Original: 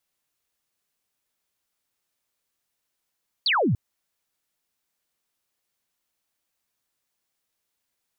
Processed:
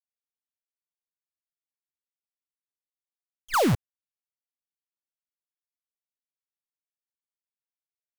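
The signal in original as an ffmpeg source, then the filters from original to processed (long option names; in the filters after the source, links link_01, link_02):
-f lavfi -i "aevalsrc='0.119*clip(t/0.002,0,1)*clip((0.29-t)/0.002,0,1)*sin(2*PI*4800*0.29/log(91/4800)*(exp(log(91/4800)*t/0.29)-1))':duration=0.29:sample_rate=44100"
-af "lowpass=frequency=1500:width=0.5412,lowpass=frequency=1500:width=1.3066,acrusher=bits=5:dc=4:mix=0:aa=0.000001"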